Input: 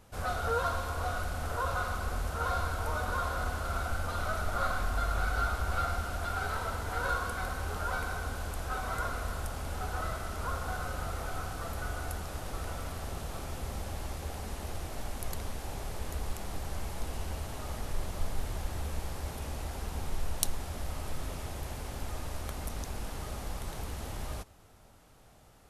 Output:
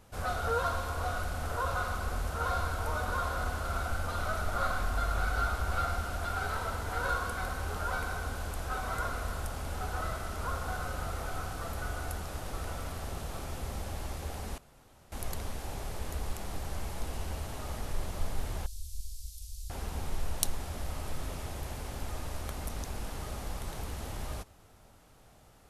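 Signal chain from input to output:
0:14.58–0:15.12: fill with room tone
0:18.66–0:19.70: inverse Chebyshev band-stop filter 210–1,200 Hz, stop band 70 dB

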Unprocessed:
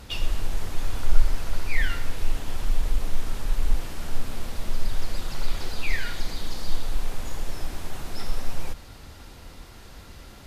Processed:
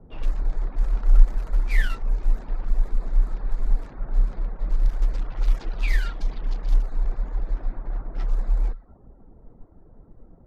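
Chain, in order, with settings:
adaptive Wiener filter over 15 samples
low-pass that shuts in the quiet parts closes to 500 Hz, open at −14.5 dBFS
reverb reduction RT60 0.59 s
frequency shifter −41 Hz

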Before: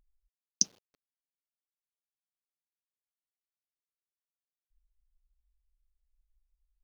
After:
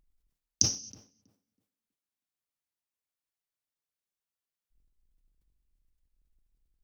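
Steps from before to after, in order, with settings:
sub-octave generator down 1 octave, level −5 dB
tape delay 322 ms, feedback 29%, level −14 dB, low-pass 1,300 Hz
on a send at −13.5 dB: convolution reverb, pre-delay 3 ms
on the sum: level that may fall only so fast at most 140 dB per second
level +1 dB

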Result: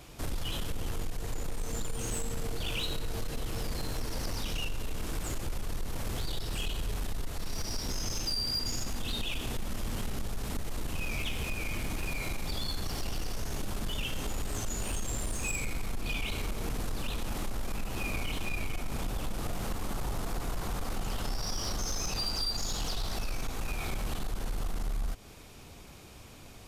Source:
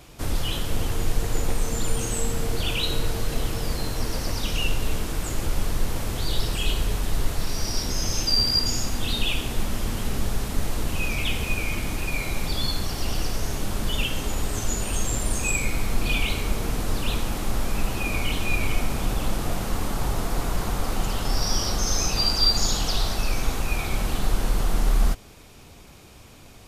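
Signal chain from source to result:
downward compressor 4 to 1, threshold −24 dBFS, peak gain reduction 9 dB
soft clipping −23.5 dBFS, distortion −16 dB
level −2.5 dB

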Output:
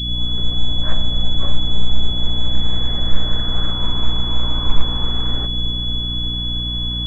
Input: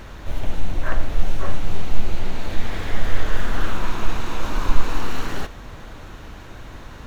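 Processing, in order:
turntable start at the beginning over 0.65 s
on a send: bucket-brigade delay 297 ms, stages 1,024, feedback 82%, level −8.5 dB
on the sum: mains hum 60 Hz, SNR 12 dB
parametric band 320 Hz −3.5 dB 0.49 octaves
switching amplifier with a slow clock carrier 3,400 Hz
level −1.5 dB

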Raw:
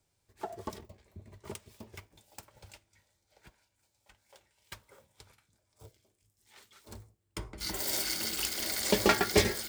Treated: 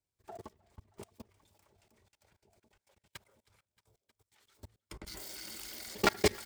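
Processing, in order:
tempo change 1.5×
echo with a time of its own for lows and highs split 780 Hz, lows 728 ms, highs 313 ms, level −14 dB
output level in coarse steps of 23 dB

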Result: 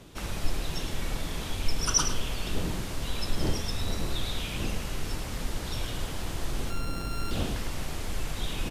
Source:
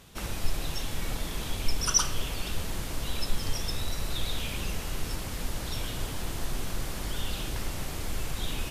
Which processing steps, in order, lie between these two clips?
0:06.70–0:07.31: samples sorted by size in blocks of 32 samples
wind on the microphone 300 Hz −41 dBFS
high-shelf EQ 12,000 Hz −8.5 dB
slap from a distant wall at 18 metres, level −9 dB

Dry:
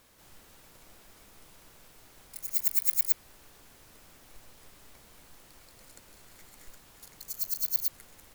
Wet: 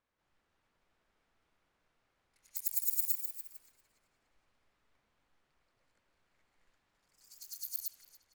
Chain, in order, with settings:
low-pass that shuts in the quiet parts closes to 1,400 Hz, open at −24.5 dBFS
first-order pre-emphasis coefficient 0.9
on a send: tape delay 289 ms, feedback 66%, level −10.5 dB, low-pass 3,900 Hz
on the sum: delay with pitch and tempo change per echo 315 ms, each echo +1 semitone, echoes 3, each echo −6 dB
level −4 dB

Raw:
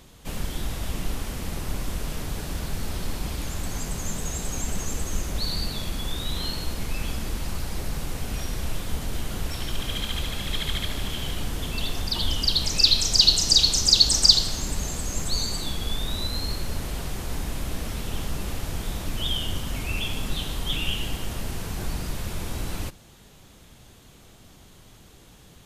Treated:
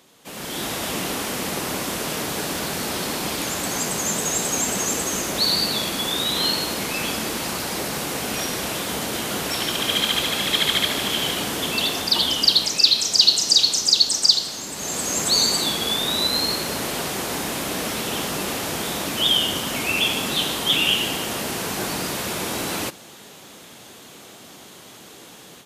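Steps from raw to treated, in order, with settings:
high-pass filter 260 Hz 12 dB per octave
automatic gain control gain up to 12 dB
level −1 dB

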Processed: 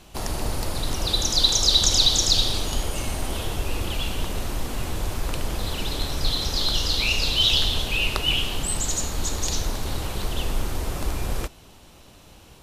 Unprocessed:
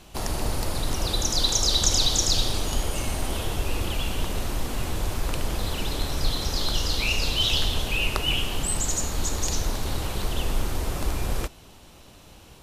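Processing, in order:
dynamic equaliser 3,800 Hz, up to +6 dB, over −38 dBFS, Q 1.8

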